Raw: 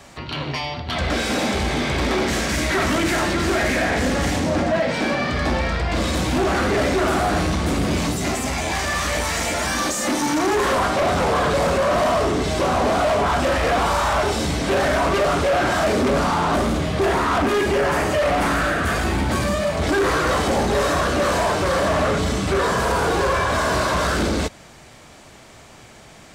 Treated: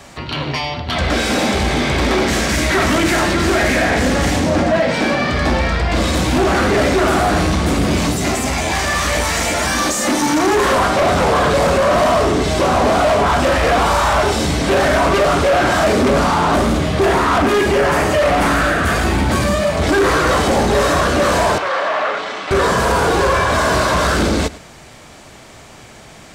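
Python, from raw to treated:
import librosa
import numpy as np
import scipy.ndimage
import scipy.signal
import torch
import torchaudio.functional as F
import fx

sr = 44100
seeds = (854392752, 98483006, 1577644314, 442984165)

y = fx.bandpass_edges(x, sr, low_hz=700.0, high_hz=3200.0, at=(21.58, 22.51))
y = y + 10.0 ** (-19.0 / 20.0) * np.pad(y, (int(106 * sr / 1000.0), 0))[:len(y)]
y = y * librosa.db_to_amplitude(5.0)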